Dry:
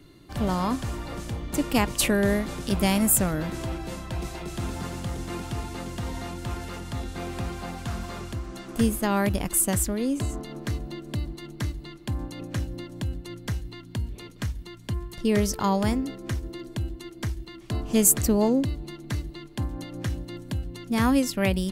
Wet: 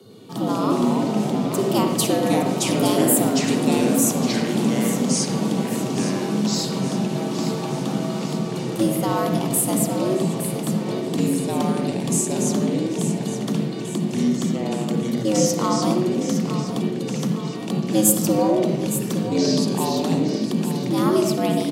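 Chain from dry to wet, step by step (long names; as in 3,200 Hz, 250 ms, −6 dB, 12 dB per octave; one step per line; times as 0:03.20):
flat-topped bell 1,900 Hz −10.5 dB 1 octave
mains-hum notches 50/100/150/200 Hz
in parallel at −2.5 dB: downward compressor, threshold −35 dBFS, peak gain reduction 19.5 dB
on the sum: delay with pitch and tempo change per echo 103 ms, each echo −4 semitones, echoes 3
repeating echo 864 ms, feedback 53%, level −10.5 dB
on a send at −3.5 dB: convolution reverb RT60 0.85 s, pre-delay 46 ms
on the sum: frequency shifter +99 Hz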